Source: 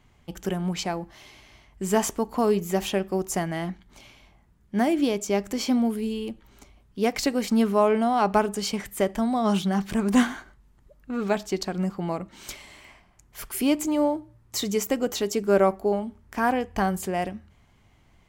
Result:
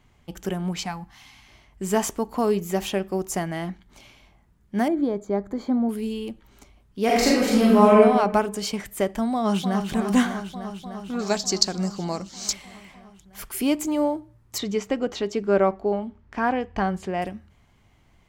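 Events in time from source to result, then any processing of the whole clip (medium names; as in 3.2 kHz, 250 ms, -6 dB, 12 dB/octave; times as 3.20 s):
0.85–1.48 s: time-frequency box 290–700 Hz -14 dB
4.88–5.89 s: boxcar filter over 16 samples
7.04–7.99 s: reverb throw, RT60 1.1 s, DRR -6 dB
9.33–9.88 s: echo throw 300 ms, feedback 80%, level -7.5 dB
11.19–12.53 s: high-order bell 5.6 kHz +15.5 dB 1.1 oct
14.58–17.22 s: low-pass 4.1 kHz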